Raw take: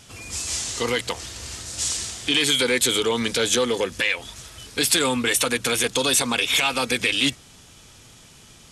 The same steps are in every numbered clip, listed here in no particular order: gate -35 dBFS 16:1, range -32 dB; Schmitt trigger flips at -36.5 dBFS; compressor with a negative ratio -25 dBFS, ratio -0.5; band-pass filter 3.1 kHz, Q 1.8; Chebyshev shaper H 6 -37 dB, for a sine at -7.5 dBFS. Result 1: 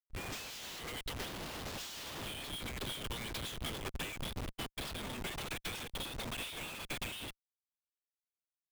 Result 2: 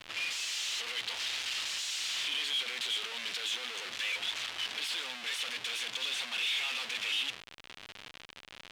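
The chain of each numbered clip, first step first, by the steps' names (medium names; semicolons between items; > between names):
compressor with a negative ratio > band-pass filter > Chebyshev shaper > Schmitt trigger > gate; Chebyshev shaper > compressor with a negative ratio > Schmitt trigger > gate > band-pass filter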